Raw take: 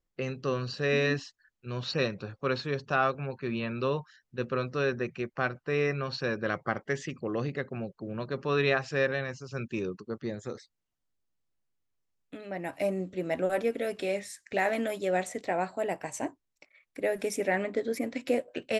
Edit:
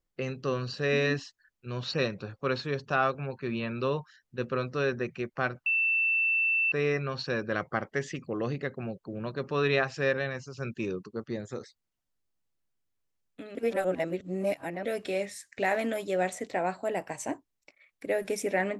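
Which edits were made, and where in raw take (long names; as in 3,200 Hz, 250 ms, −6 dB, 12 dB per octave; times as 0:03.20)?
0:05.66: insert tone 2,670 Hz −23 dBFS 1.06 s
0:12.49–0:13.79: reverse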